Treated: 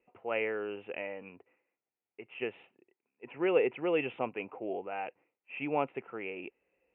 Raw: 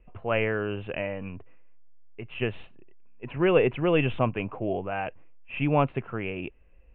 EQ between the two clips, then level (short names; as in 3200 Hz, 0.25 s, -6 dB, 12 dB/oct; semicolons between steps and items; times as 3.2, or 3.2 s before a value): air absorption 150 m; speaker cabinet 470–2600 Hz, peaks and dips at 630 Hz -8 dB, 1100 Hz -10 dB, 1600 Hz -9 dB; 0.0 dB